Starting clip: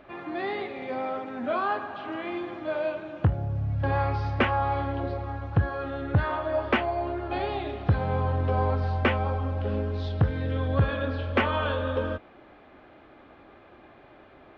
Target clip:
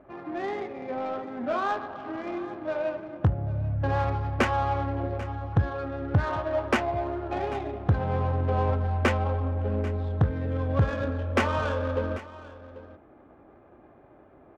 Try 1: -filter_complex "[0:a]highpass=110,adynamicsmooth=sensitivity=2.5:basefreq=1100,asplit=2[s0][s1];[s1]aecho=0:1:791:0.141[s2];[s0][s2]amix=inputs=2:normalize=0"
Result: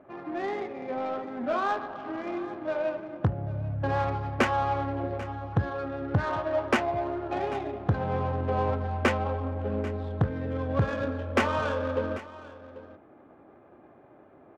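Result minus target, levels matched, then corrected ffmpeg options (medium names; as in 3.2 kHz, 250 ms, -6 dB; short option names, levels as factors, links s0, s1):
125 Hz band -2.5 dB
-filter_complex "[0:a]highpass=35,adynamicsmooth=sensitivity=2.5:basefreq=1100,asplit=2[s0][s1];[s1]aecho=0:1:791:0.141[s2];[s0][s2]amix=inputs=2:normalize=0"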